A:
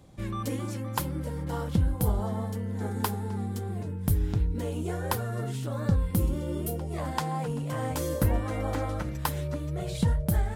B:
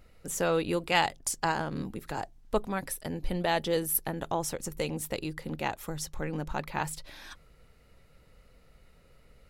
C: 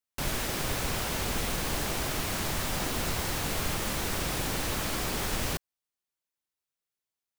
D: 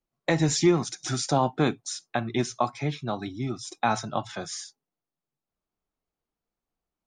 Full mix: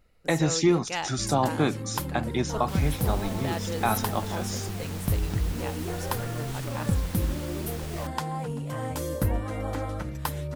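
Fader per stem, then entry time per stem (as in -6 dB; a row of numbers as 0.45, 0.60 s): -1.0, -6.5, -10.0, -1.0 dB; 1.00, 0.00, 2.50, 0.00 s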